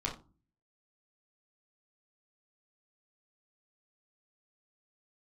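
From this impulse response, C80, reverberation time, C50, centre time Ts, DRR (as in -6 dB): 16.0 dB, 0.35 s, 10.0 dB, 19 ms, -3.5 dB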